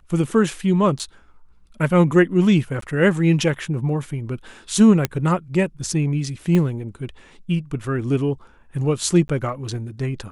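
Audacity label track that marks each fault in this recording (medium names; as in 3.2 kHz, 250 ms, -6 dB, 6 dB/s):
0.990000	1.000000	dropout 7.9 ms
2.810000	2.820000	dropout 13 ms
5.050000	5.050000	pop -5 dBFS
6.550000	6.550000	pop -10 dBFS
9.280000	9.290000	dropout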